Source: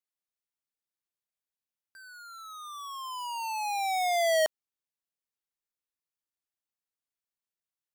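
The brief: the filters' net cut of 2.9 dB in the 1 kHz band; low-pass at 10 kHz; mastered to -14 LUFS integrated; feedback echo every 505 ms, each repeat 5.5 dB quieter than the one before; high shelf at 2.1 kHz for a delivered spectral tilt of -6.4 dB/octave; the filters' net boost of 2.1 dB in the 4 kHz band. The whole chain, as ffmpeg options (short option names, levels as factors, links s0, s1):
-af "lowpass=10000,equalizer=f=1000:t=o:g=-3.5,highshelf=f=2100:g=-6.5,equalizer=f=4000:t=o:g=9,aecho=1:1:505|1010|1515|2020|2525|3030|3535:0.531|0.281|0.149|0.079|0.0419|0.0222|0.0118,volume=8.41"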